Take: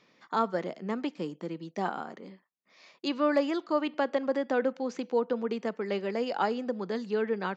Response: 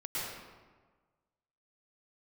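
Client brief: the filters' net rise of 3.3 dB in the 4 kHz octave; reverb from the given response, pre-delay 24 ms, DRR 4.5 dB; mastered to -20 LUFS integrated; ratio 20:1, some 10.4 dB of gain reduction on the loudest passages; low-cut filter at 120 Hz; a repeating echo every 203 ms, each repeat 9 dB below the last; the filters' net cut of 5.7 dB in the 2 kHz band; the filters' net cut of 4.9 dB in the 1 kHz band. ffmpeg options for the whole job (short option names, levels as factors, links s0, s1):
-filter_complex "[0:a]highpass=120,equalizer=f=1000:t=o:g=-5,equalizer=f=2000:t=o:g=-7.5,equalizer=f=4000:t=o:g=7.5,acompressor=threshold=0.0224:ratio=20,aecho=1:1:203|406|609|812:0.355|0.124|0.0435|0.0152,asplit=2[s0][s1];[1:a]atrim=start_sample=2205,adelay=24[s2];[s1][s2]afir=irnorm=-1:irlink=0,volume=0.355[s3];[s0][s3]amix=inputs=2:normalize=0,volume=7.5"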